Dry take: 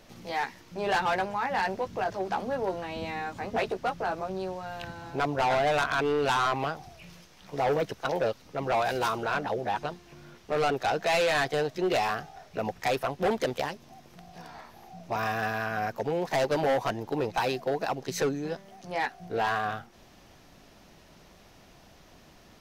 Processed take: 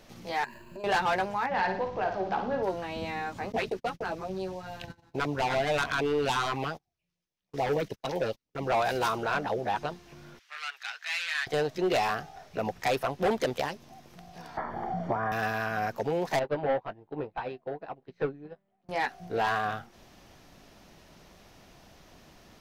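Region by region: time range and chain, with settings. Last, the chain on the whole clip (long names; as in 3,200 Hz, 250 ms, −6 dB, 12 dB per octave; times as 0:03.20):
0:00.44–0:00.84: running median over 9 samples + EQ curve with evenly spaced ripples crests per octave 1.4, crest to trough 17 dB + downward compressor 12 to 1, threshold −38 dBFS
0:01.46–0:02.63: high-frequency loss of the air 140 metres + flutter between parallel walls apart 9.3 metres, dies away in 0.49 s
0:03.52–0:08.67: noise gate −40 dBFS, range −36 dB + auto-filter notch sine 6.9 Hz 600–1,500 Hz
0:10.39–0:11.47: high-pass filter 1,500 Hz 24 dB per octave + high-shelf EQ 5,600 Hz −9 dB
0:14.57–0:15.32: Savitzky-Golay smoothing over 41 samples + multiband upward and downward compressor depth 100%
0:16.39–0:18.89: high-frequency loss of the air 400 metres + double-tracking delay 20 ms −11.5 dB + expander for the loud parts 2.5 to 1, over −40 dBFS
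whole clip: no processing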